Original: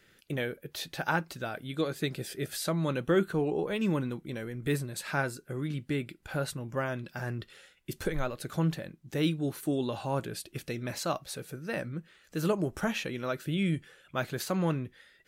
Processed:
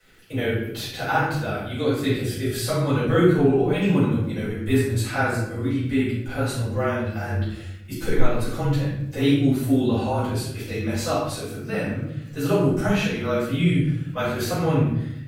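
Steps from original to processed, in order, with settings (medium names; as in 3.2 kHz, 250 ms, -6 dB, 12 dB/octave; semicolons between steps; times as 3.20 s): frequency shift -25 Hz; crackle 54 per s -48 dBFS; simulated room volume 220 m³, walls mixed, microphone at 5.2 m; trim -6 dB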